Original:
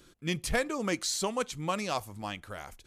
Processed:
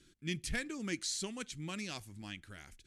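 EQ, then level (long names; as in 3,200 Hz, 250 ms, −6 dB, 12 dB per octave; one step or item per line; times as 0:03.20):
low-pass filter 11,000 Hz 24 dB per octave
flat-topped bell 760 Hz −12.5 dB
−5.5 dB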